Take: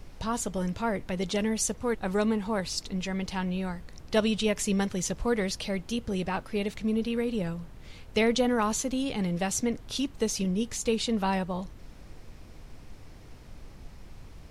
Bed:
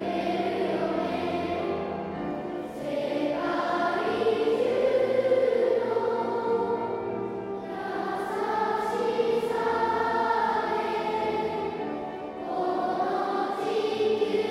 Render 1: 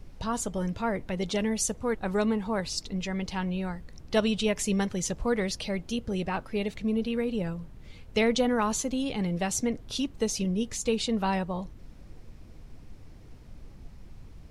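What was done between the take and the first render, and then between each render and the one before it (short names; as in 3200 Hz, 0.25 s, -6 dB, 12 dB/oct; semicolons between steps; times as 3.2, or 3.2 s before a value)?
denoiser 6 dB, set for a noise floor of -49 dBFS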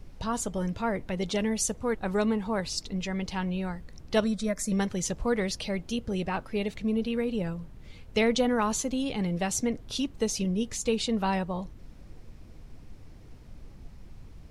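4.24–4.72 fixed phaser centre 580 Hz, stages 8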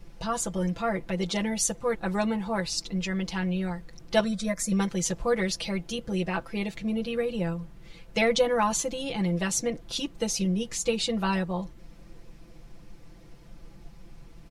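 low shelf 200 Hz -5 dB; comb 5.9 ms, depth 92%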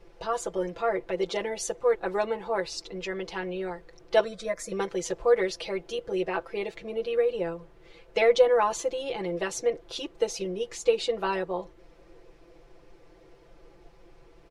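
LPF 2900 Hz 6 dB/oct; resonant low shelf 300 Hz -8.5 dB, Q 3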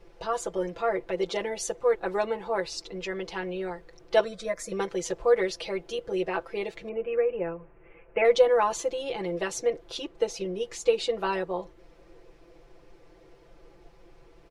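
6.89–8.25 elliptic low-pass 2600 Hz; 9.97–10.55 high shelf 4900 Hz -5.5 dB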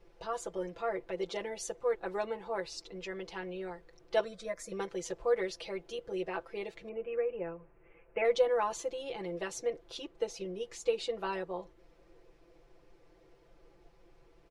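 gain -7.5 dB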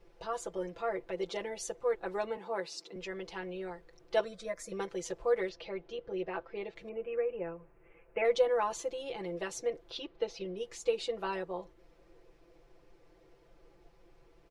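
2.37–2.96 steep high-pass 160 Hz; 5.49–6.76 air absorption 170 m; 9.9–10.57 resonant high shelf 5900 Hz -11.5 dB, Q 1.5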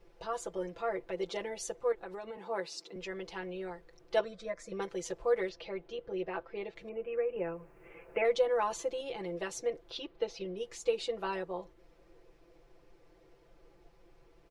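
1.92–2.44 compressor, threshold -39 dBFS; 4.19–4.82 air absorption 76 m; 7.36–9.01 three-band squash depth 40%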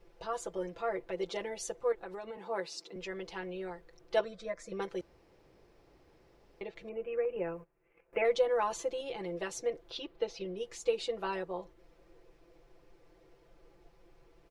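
5.01–6.61 room tone; 7.25–8.13 gate -50 dBFS, range -18 dB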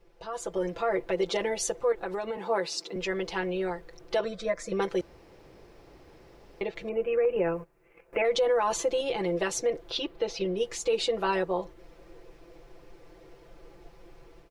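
limiter -28 dBFS, peak gain reduction 10.5 dB; AGC gain up to 10 dB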